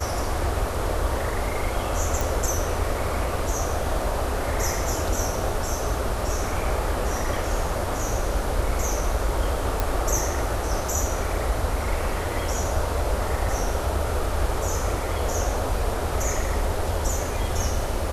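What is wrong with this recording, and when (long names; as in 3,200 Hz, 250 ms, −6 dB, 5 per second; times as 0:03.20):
0:02.21: click
0:09.80: click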